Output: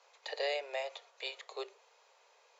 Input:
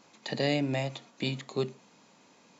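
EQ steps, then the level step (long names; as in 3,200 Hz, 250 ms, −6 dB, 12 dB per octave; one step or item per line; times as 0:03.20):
Butterworth high-pass 430 Hz 72 dB per octave
high-frequency loss of the air 56 metres
−3.5 dB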